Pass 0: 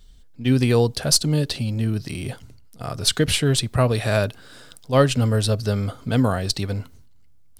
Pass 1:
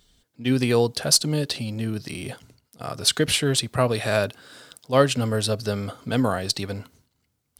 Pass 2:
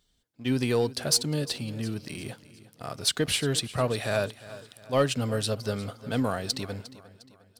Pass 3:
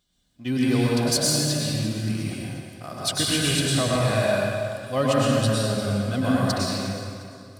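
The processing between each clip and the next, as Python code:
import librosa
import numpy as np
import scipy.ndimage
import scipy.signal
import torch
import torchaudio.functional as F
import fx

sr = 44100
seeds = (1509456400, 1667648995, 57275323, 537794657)

y1 = fx.highpass(x, sr, hz=220.0, slope=6)
y2 = fx.leveller(y1, sr, passes=1)
y2 = fx.echo_feedback(y2, sr, ms=355, feedback_pct=44, wet_db=-17.5)
y2 = y2 * 10.0 ** (-8.5 / 20.0)
y3 = fx.notch_comb(y2, sr, f0_hz=450.0)
y3 = fx.rev_plate(y3, sr, seeds[0], rt60_s=2.1, hf_ratio=0.75, predelay_ms=90, drr_db=-5.5)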